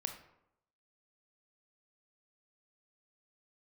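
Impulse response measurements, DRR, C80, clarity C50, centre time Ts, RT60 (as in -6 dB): 5.0 dB, 12.0 dB, 8.5 dB, 17 ms, 0.80 s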